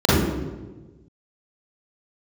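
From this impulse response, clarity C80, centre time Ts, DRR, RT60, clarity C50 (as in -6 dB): 0.0 dB, 0.109 s, -11.0 dB, 1.3 s, -4.5 dB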